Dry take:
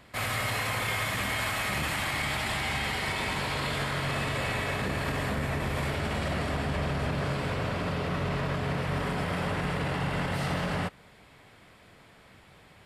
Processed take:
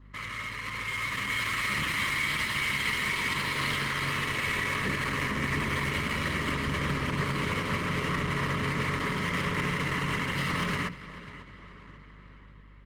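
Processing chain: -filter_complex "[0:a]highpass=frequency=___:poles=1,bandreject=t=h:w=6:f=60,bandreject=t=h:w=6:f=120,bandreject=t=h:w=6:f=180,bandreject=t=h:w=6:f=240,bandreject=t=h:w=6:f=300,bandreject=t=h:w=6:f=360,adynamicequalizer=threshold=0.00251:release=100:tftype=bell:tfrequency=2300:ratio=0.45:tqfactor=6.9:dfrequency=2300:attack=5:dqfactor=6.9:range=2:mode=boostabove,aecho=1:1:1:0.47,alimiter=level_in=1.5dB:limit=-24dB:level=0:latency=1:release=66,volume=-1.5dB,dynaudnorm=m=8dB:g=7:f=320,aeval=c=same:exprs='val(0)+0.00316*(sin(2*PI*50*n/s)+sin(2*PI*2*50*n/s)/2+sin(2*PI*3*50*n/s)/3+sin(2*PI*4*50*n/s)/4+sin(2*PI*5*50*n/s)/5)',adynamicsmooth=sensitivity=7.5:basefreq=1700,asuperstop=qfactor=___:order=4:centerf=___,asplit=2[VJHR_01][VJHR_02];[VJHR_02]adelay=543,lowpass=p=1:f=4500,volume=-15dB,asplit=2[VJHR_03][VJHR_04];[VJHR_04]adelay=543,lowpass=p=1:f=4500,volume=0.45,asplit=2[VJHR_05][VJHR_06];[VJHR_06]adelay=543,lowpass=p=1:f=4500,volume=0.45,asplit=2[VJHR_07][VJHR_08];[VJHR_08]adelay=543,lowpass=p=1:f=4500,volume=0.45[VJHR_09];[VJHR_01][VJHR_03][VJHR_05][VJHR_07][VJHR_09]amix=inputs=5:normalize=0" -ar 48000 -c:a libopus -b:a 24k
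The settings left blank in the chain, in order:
270, 1.5, 750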